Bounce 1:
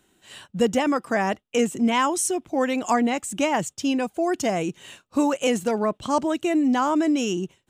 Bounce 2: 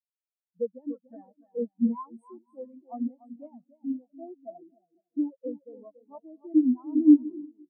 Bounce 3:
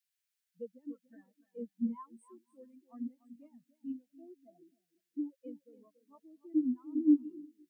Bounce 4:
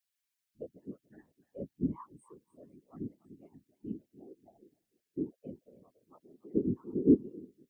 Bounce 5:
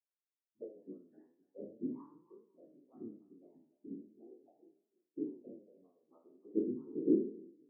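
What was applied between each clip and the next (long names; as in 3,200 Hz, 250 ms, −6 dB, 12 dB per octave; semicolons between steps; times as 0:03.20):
high-shelf EQ 11,000 Hz +10 dB; bouncing-ball delay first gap 290 ms, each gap 0.75×, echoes 5; every bin expanded away from the loudest bin 4 to 1
drawn EQ curve 140 Hz 0 dB, 210 Hz −9 dB, 370 Hz −9 dB, 750 Hz −23 dB, 1,600 Hz +9 dB
random phases in short frames
peak hold with a decay on every bin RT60 0.50 s; flanger 0.41 Hz, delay 4.6 ms, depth 8 ms, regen +36%; four-pole ladder band-pass 430 Hz, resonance 25%; level +8 dB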